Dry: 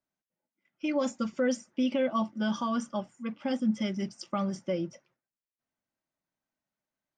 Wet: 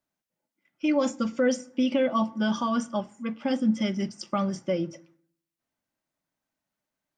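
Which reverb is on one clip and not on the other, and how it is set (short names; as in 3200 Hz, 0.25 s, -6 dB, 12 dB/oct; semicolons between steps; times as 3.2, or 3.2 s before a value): FDN reverb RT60 0.6 s, low-frequency decay 1.25×, high-frequency decay 0.65×, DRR 16 dB; gain +4 dB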